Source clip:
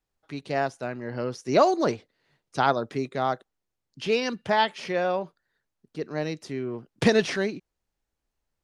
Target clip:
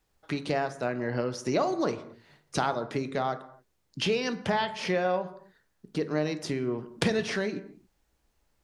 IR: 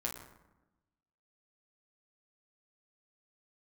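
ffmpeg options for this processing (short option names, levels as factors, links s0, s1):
-filter_complex "[0:a]acompressor=threshold=0.0141:ratio=4,asplit=2[s0][s1];[1:a]atrim=start_sample=2205,afade=t=out:st=0.33:d=0.01,atrim=end_sample=14994[s2];[s1][s2]afir=irnorm=-1:irlink=0,volume=0.501[s3];[s0][s3]amix=inputs=2:normalize=0,volume=2.11"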